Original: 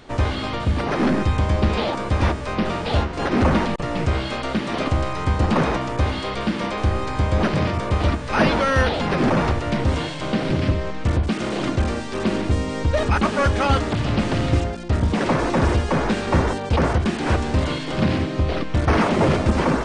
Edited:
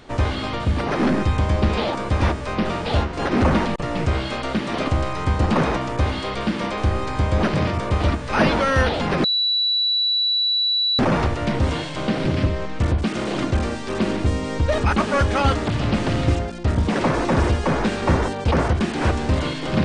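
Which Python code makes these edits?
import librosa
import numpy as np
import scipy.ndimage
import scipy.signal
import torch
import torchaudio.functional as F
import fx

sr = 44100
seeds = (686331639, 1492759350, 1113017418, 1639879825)

y = fx.edit(x, sr, fx.insert_tone(at_s=9.24, length_s=1.75, hz=3940.0, db=-17.0), tone=tone)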